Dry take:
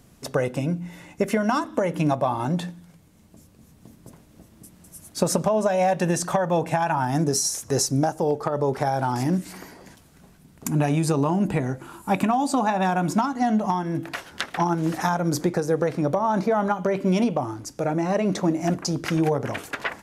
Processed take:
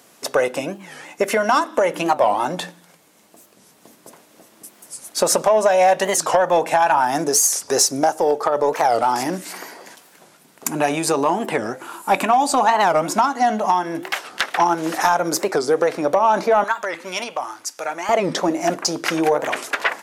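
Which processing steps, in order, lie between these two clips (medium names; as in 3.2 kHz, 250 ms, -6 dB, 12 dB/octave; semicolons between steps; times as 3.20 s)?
high-pass 470 Hz 12 dB/octave, from 16.64 s 1.1 kHz, from 18.10 s 450 Hz; saturation -14 dBFS, distortion -23 dB; warped record 45 rpm, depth 250 cents; trim +9 dB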